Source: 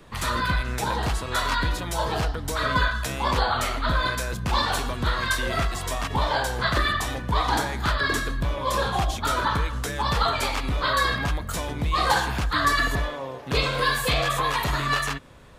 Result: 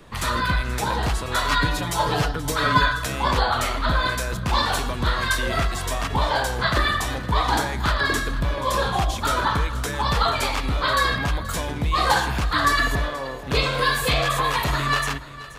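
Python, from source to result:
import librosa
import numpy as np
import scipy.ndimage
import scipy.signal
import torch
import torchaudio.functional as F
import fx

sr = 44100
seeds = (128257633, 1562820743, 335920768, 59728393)

p1 = fx.comb(x, sr, ms=6.9, depth=0.83, at=(1.49, 3.04))
p2 = p1 + fx.echo_single(p1, sr, ms=479, db=-16.5, dry=0)
y = F.gain(torch.from_numpy(p2), 2.0).numpy()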